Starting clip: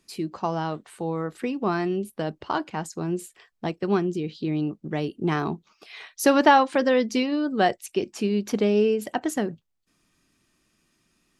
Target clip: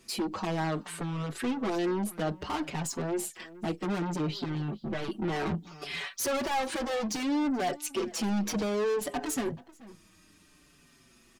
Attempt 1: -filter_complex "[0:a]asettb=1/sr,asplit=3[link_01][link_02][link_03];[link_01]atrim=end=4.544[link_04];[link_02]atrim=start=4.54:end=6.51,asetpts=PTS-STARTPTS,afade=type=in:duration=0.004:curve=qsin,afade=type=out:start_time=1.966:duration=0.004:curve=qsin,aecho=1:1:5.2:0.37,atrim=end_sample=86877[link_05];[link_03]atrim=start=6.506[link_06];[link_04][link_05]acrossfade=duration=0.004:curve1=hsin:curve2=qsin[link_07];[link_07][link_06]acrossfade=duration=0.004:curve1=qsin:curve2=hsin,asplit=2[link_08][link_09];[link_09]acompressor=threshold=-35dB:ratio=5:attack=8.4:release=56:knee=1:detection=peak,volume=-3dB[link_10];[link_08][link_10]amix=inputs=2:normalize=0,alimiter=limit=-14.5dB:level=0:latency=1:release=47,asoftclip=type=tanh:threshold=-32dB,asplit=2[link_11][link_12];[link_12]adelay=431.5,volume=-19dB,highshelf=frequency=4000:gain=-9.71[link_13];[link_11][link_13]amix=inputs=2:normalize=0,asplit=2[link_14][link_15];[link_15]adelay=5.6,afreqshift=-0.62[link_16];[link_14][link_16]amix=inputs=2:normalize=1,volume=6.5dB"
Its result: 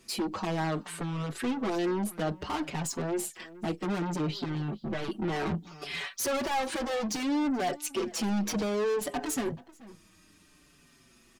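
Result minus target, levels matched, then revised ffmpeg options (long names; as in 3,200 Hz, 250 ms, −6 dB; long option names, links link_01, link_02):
downward compressor: peak gain reduction −5 dB
-filter_complex "[0:a]asettb=1/sr,asplit=3[link_01][link_02][link_03];[link_01]atrim=end=4.544[link_04];[link_02]atrim=start=4.54:end=6.51,asetpts=PTS-STARTPTS,afade=type=in:duration=0.004:curve=qsin,afade=type=out:start_time=1.966:duration=0.004:curve=qsin,aecho=1:1:5.2:0.37,atrim=end_sample=86877[link_05];[link_03]atrim=start=6.506[link_06];[link_04][link_05]acrossfade=duration=0.004:curve1=hsin:curve2=qsin[link_07];[link_07][link_06]acrossfade=duration=0.004:curve1=qsin:curve2=hsin,asplit=2[link_08][link_09];[link_09]acompressor=threshold=-41dB:ratio=5:attack=8.4:release=56:knee=1:detection=peak,volume=-3dB[link_10];[link_08][link_10]amix=inputs=2:normalize=0,alimiter=limit=-14.5dB:level=0:latency=1:release=47,asoftclip=type=tanh:threshold=-32dB,asplit=2[link_11][link_12];[link_12]adelay=431.5,volume=-19dB,highshelf=frequency=4000:gain=-9.71[link_13];[link_11][link_13]amix=inputs=2:normalize=0,asplit=2[link_14][link_15];[link_15]adelay=5.6,afreqshift=-0.62[link_16];[link_14][link_16]amix=inputs=2:normalize=1,volume=6.5dB"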